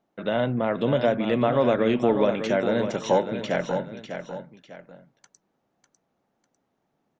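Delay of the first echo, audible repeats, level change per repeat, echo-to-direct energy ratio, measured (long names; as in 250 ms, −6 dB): 599 ms, 2, −9.0 dB, −8.0 dB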